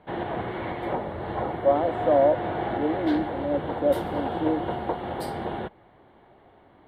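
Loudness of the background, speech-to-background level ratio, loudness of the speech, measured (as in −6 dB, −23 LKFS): −31.0 LKFS, 5.0 dB, −26.0 LKFS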